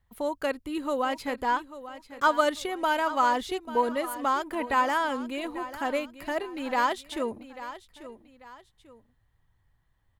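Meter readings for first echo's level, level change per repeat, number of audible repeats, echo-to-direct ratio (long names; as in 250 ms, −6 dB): −14.0 dB, −9.0 dB, 2, −13.5 dB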